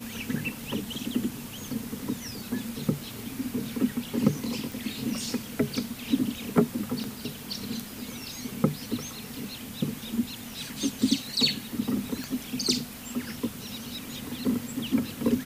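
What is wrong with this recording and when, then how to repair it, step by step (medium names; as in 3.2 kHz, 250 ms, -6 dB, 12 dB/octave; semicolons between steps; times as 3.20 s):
4.72 s: pop
7.04 s: pop
12.24 s: pop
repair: de-click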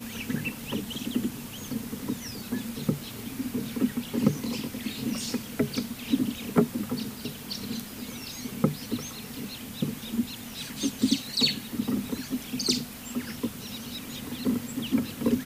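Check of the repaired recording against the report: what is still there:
nothing left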